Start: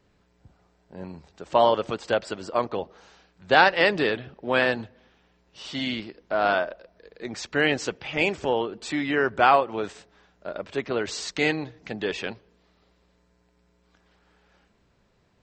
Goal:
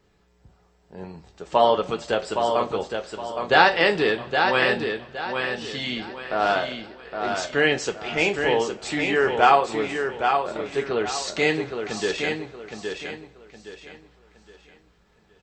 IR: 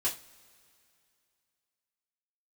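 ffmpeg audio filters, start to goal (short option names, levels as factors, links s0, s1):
-filter_complex "[0:a]aecho=1:1:816|1632|2448|3264:0.531|0.17|0.0544|0.0174,asplit=2[s0][s1];[1:a]atrim=start_sample=2205,asetrate=48510,aresample=44100,highshelf=f=5800:g=6.5[s2];[s1][s2]afir=irnorm=-1:irlink=0,volume=0.422[s3];[s0][s3]amix=inputs=2:normalize=0,volume=0.841"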